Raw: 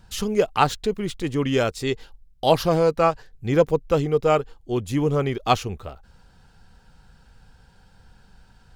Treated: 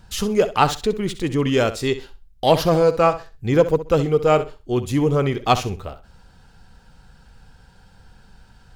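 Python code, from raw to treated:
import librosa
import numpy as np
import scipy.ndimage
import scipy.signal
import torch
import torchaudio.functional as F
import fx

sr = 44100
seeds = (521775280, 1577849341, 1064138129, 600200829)

p1 = 10.0 ** (-14.5 / 20.0) * np.tanh(x / 10.0 ** (-14.5 / 20.0))
p2 = x + (p1 * librosa.db_to_amplitude(-6.5))
y = fx.room_flutter(p2, sr, wall_m=11.1, rt60_s=0.29)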